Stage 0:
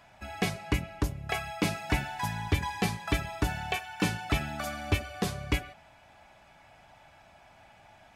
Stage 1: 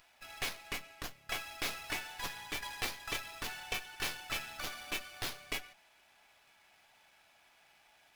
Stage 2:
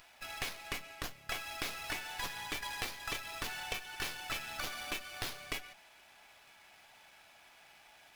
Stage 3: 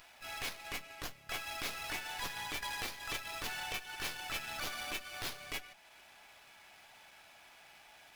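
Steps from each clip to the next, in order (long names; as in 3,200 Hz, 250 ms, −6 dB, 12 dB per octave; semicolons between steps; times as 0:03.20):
first difference; windowed peak hold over 5 samples; level +5.5 dB
downward compressor 5 to 1, threshold −41 dBFS, peak gain reduction 9.5 dB; level +5.5 dB
transient designer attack −8 dB, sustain −4 dB; level +2 dB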